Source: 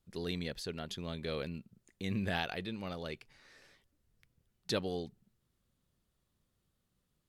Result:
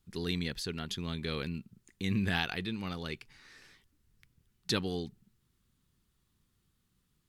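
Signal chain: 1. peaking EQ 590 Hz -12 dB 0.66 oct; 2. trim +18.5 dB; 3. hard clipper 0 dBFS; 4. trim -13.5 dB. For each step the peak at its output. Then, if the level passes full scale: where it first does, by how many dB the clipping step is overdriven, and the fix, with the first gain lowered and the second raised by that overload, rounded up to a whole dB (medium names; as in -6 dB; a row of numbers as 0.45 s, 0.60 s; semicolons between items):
-20.5 dBFS, -2.0 dBFS, -2.0 dBFS, -15.5 dBFS; nothing clips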